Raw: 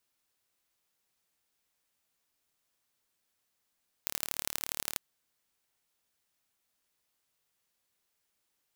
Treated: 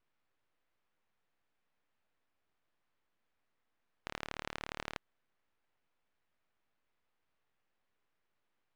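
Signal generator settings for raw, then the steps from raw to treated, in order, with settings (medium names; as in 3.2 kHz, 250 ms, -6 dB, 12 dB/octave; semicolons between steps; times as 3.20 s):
pulse train 37 per s, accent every 3, -3.5 dBFS 0.91 s
half-wave rectifier; low-pass 2.2 kHz 12 dB/octave; in parallel at 0 dB: peak limiter -32 dBFS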